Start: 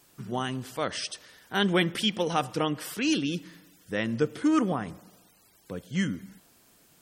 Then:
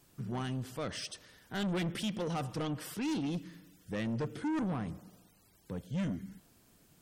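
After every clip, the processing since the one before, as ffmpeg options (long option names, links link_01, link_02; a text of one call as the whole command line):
ffmpeg -i in.wav -af "lowshelf=frequency=260:gain=11,asoftclip=type=tanh:threshold=-24dB,volume=-6.5dB" out.wav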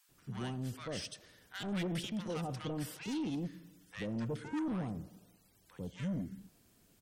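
ffmpeg -i in.wav -filter_complex "[0:a]acrossover=split=1000[link_01][link_02];[link_01]adelay=90[link_03];[link_03][link_02]amix=inputs=2:normalize=0,volume=-2.5dB" out.wav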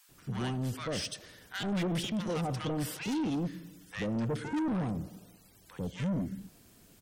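ffmpeg -i in.wav -af "asoftclip=type=tanh:threshold=-35.5dB,volume=8dB" out.wav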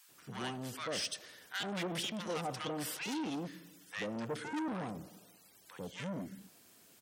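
ffmpeg -i in.wav -af "highpass=frequency=550:poles=1" out.wav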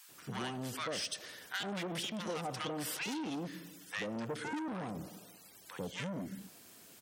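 ffmpeg -i in.wav -af "acompressor=threshold=-40dB:ratio=6,volume=5dB" out.wav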